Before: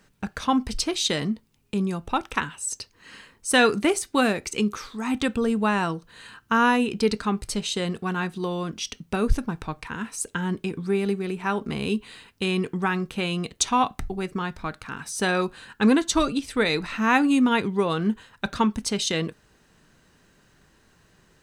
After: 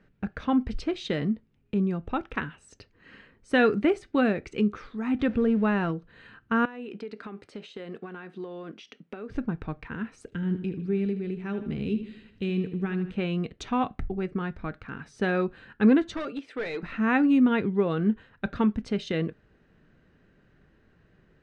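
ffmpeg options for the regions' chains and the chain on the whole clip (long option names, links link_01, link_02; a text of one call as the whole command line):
ffmpeg -i in.wav -filter_complex "[0:a]asettb=1/sr,asplit=3[link_01][link_02][link_03];[link_01]atrim=end=5.194[link_04];[link_02]atrim=start=5.19:end=5.91,asetpts=PTS-STARTPTS,afade=type=in:duration=0.004:curve=qsin,afade=type=out:start_time=0.716:duration=0.004:curve=qsin,aeval=exprs='val(0)+0.5*0.015*sgn(val(0))':channel_layout=same,lowpass=7000[link_05];[link_03]atrim=start=5.906[link_06];[link_04][link_05]acrossfade=duration=0.004:curve1=hsin:curve2=qsin[link_07];[link_07][link_06]acrossfade=duration=0.004:curve1=qsin:curve2=hsin,asettb=1/sr,asplit=3[link_08][link_09][link_10];[link_08]atrim=end=6.654[link_11];[link_09]atrim=start=6.65:end=9.35,asetpts=PTS-STARTPTS,afade=type=in:duration=0.004:curve=qsin,afade=type=out:start_time=2.696:duration=0.004:curve=qsin,highpass=310,acompressor=threshold=-31dB:ratio=16:attack=3.2:release=140:knee=1:detection=peak[link_12];[link_10]atrim=start=9.346[link_13];[link_11][link_12]acrossfade=duration=0.004:curve1=hsin:curve2=qsin[link_14];[link_14][link_13]acrossfade=duration=0.004:curve1=qsin:curve2=hsin,asettb=1/sr,asplit=3[link_15][link_16][link_17];[link_15]atrim=end=10.324[link_18];[link_16]atrim=start=10.32:end=13.12,asetpts=PTS-STARTPTS,afade=type=in:duration=0.004:curve=qsin,afade=type=out:start_time=2.796:duration=0.004:curve=qsin,equalizer=frequency=1000:width_type=o:width=2:gain=-11,acompressor=mode=upward:threshold=-43dB:ratio=2.5:attack=3.2:release=140:knee=2.83:detection=peak,aecho=1:1:77|154|231|308|385:0.282|0.132|0.0623|0.0293|0.0138,atrim=end_sample=123480[link_19];[link_17]atrim=start=13.116[link_20];[link_18][link_19]acrossfade=duration=0.004:curve1=hsin:curve2=qsin[link_21];[link_21][link_20]acrossfade=duration=0.004:curve1=qsin:curve2=hsin,asettb=1/sr,asplit=3[link_22][link_23][link_24];[link_22]atrim=end=16.144[link_25];[link_23]atrim=start=16.14:end=16.83,asetpts=PTS-STARTPTS,afade=type=in:duration=0.004:curve=qsin,afade=type=out:start_time=0.686:duration=0.004:curve=qsin,highpass=420,asoftclip=type=hard:threshold=-25.5dB[link_26];[link_24]atrim=start=16.826[link_27];[link_25][link_26]acrossfade=duration=0.004:curve1=hsin:curve2=qsin[link_28];[link_28][link_27]acrossfade=duration=0.004:curve1=qsin:curve2=hsin,lowpass=1800,equalizer=frequency=970:width=1.8:gain=-9.5" out.wav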